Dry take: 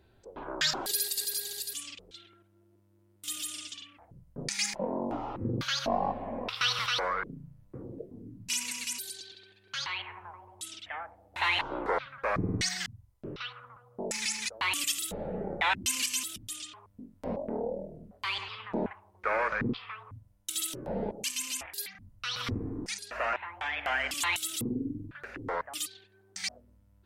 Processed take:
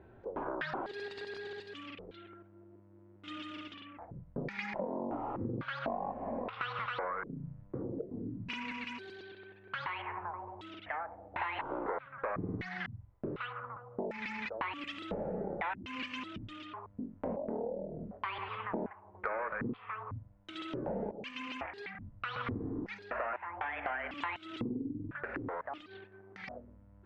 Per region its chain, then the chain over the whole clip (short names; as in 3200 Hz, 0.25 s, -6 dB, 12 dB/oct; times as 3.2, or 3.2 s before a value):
25.37–26.48 sample leveller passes 1 + compressor, threshold -42 dBFS
whole clip: Bessel low-pass 1400 Hz, order 4; low shelf 100 Hz -9 dB; compressor 5:1, threshold -45 dBFS; gain +9.5 dB